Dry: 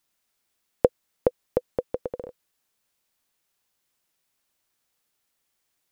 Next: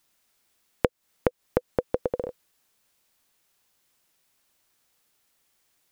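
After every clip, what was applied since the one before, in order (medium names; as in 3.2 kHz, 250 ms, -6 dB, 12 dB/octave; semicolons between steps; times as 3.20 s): compression 12:1, threshold -25 dBFS, peak gain reduction 14 dB; trim +6 dB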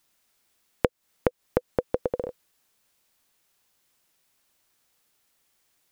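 no audible change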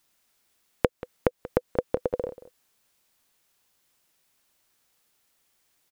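delay 184 ms -16.5 dB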